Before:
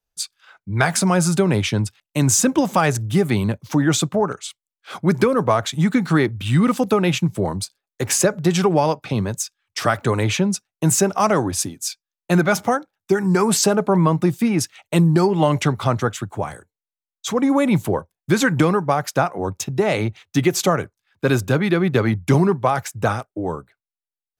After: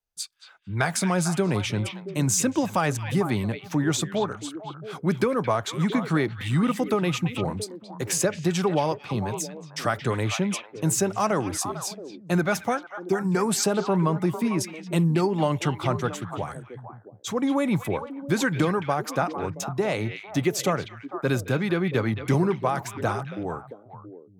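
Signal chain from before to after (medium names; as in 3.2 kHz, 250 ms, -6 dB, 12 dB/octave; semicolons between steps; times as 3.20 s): repeats whose band climbs or falls 225 ms, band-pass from 2.6 kHz, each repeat -1.4 oct, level -4.5 dB; trim -6.5 dB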